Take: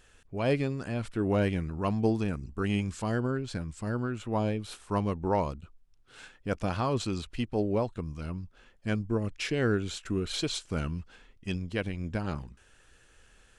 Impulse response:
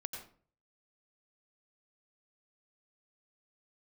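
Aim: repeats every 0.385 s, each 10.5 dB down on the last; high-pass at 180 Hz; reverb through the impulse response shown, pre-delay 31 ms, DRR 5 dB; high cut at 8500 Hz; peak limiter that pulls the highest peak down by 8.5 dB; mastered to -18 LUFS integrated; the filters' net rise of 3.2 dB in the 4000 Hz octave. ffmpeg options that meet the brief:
-filter_complex "[0:a]highpass=180,lowpass=8.5k,equalizer=f=4k:t=o:g=4,alimiter=limit=-21.5dB:level=0:latency=1,aecho=1:1:385|770|1155:0.299|0.0896|0.0269,asplit=2[a][b];[1:a]atrim=start_sample=2205,adelay=31[c];[b][c]afir=irnorm=-1:irlink=0,volume=-4dB[d];[a][d]amix=inputs=2:normalize=0,volume=16dB"

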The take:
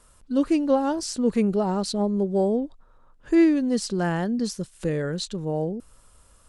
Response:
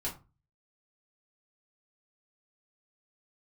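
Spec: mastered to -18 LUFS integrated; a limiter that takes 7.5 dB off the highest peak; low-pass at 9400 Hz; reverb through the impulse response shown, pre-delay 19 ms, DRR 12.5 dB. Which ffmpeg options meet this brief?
-filter_complex "[0:a]lowpass=9.4k,alimiter=limit=-17dB:level=0:latency=1,asplit=2[a][b];[1:a]atrim=start_sample=2205,adelay=19[c];[b][c]afir=irnorm=-1:irlink=0,volume=-15dB[d];[a][d]amix=inputs=2:normalize=0,volume=8dB"

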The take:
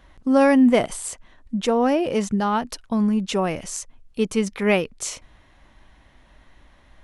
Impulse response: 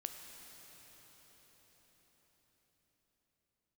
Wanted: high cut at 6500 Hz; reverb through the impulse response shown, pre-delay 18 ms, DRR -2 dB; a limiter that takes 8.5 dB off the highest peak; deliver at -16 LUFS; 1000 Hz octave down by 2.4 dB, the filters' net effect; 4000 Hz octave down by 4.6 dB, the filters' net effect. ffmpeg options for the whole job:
-filter_complex "[0:a]lowpass=6.5k,equalizer=f=1k:t=o:g=-3,equalizer=f=4k:t=o:g=-6,alimiter=limit=-15dB:level=0:latency=1,asplit=2[a][b];[1:a]atrim=start_sample=2205,adelay=18[c];[b][c]afir=irnorm=-1:irlink=0,volume=4dB[d];[a][d]amix=inputs=2:normalize=0,volume=5.5dB"

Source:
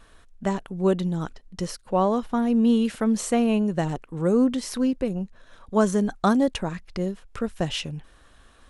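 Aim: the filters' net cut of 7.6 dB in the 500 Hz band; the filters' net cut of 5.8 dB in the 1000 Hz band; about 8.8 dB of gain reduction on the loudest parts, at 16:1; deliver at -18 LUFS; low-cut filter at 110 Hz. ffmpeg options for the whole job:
-af "highpass=110,equalizer=f=500:t=o:g=-8.5,equalizer=f=1k:t=o:g=-4.5,acompressor=threshold=-27dB:ratio=16,volume=15dB"

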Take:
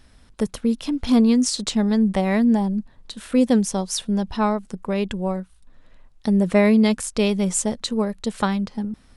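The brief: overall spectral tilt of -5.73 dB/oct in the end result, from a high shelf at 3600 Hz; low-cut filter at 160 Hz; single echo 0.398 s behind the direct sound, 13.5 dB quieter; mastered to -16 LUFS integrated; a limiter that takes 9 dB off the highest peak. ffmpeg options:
-af "highpass=160,highshelf=f=3.6k:g=-8.5,alimiter=limit=-15dB:level=0:latency=1,aecho=1:1:398:0.211,volume=8.5dB"

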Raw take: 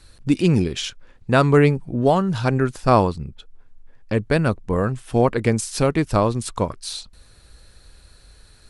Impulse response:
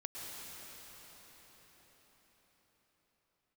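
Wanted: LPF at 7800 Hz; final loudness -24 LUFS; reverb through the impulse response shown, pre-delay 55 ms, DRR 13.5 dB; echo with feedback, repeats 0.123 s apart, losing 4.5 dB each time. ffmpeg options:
-filter_complex "[0:a]lowpass=7.8k,aecho=1:1:123|246|369|492|615|738|861|984|1107:0.596|0.357|0.214|0.129|0.0772|0.0463|0.0278|0.0167|0.01,asplit=2[a][b];[1:a]atrim=start_sample=2205,adelay=55[c];[b][c]afir=irnorm=-1:irlink=0,volume=-13.5dB[d];[a][d]amix=inputs=2:normalize=0,volume=-5dB"

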